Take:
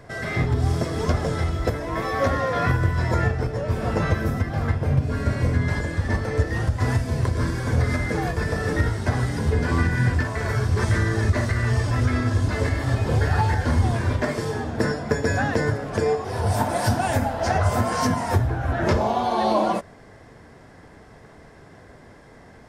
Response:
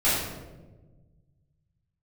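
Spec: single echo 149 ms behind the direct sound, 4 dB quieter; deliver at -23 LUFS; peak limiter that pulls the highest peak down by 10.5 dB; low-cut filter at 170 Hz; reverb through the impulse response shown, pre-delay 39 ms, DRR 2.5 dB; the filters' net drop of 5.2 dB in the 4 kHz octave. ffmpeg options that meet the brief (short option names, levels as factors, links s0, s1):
-filter_complex "[0:a]highpass=170,equalizer=f=4000:t=o:g=-7,alimiter=limit=0.106:level=0:latency=1,aecho=1:1:149:0.631,asplit=2[s0][s1];[1:a]atrim=start_sample=2205,adelay=39[s2];[s1][s2]afir=irnorm=-1:irlink=0,volume=0.133[s3];[s0][s3]amix=inputs=2:normalize=0,volume=1.26"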